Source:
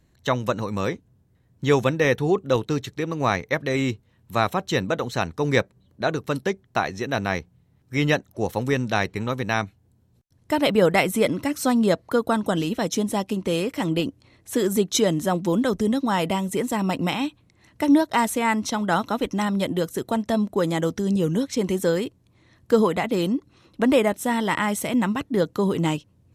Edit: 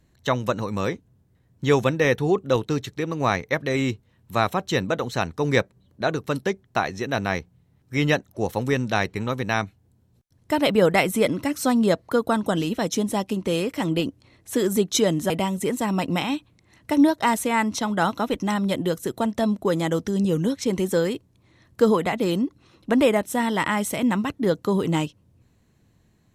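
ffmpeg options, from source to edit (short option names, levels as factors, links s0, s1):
-filter_complex "[0:a]asplit=2[s0][s1];[s0]atrim=end=15.302[s2];[s1]atrim=start=16.208[s3];[s2][s3]acrossfade=d=0.004:c1=hsin:c2=hsin"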